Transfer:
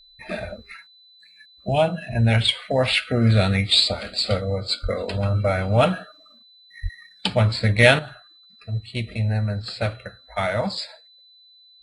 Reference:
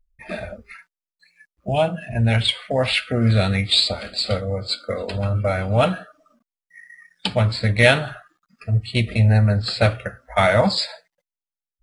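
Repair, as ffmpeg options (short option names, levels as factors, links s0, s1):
-filter_complex "[0:a]bandreject=f=4000:w=30,asplit=3[s0][s1][s2];[s0]afade=t=out:st=4.82:d=0.02[s3];[s1]highpass=f=140:w=0.5412,highpass=f=140:w=1.3066,afade=t=in:st=4.82:d=0.02,afade=t=out:st=4.94:d=0.02[s4];[s2]afade=t=in:st=4.94:d=0.02[s5];[s3][s4][s5]amix=inputs=3:normalize=0,asplit=3[s6][s7][s8];[s6]afade=t=out:st=6.82:d=0.02[s9];[s7]highpass=f=140:w=0.5412,highpass=f=140:w=1.3066,afade=t=in:st=6.82:d=0.02,afade=t=out:st=6.94:d=0.02[s10];[s8]afade=t=in:st=6.94:d=0.02[s11];[s9][s10][s11]amix=inputs=3:normalize=0,asetnsamples=n=441:p=0,asendcmd='7.99 volume volume 7.5dB',volume=1"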